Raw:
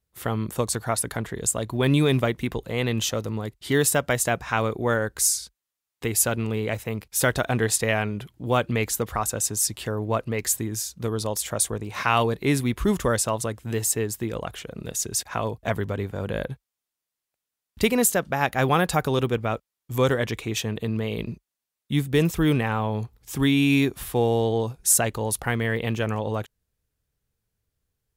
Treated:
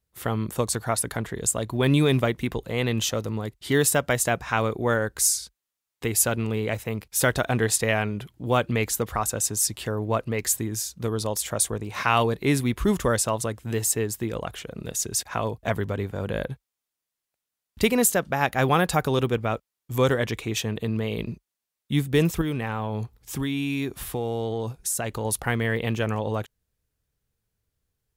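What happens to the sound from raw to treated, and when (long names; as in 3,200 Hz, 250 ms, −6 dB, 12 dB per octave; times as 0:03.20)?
0:22.41–0:25.25: downward compressor 5 to 1, threshold −24 dBFS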